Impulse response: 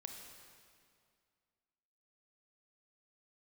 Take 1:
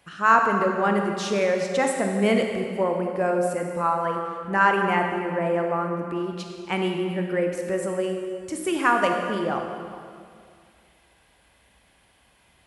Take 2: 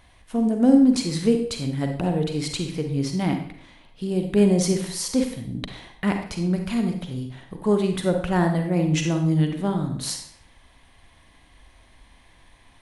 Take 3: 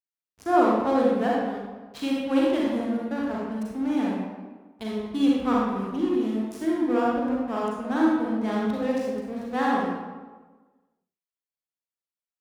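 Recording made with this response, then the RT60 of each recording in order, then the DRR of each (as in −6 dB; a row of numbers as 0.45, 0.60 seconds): 1; 2.2, 0.60, 1.3 seconds; 2.5, 4.0, −4.5 decibels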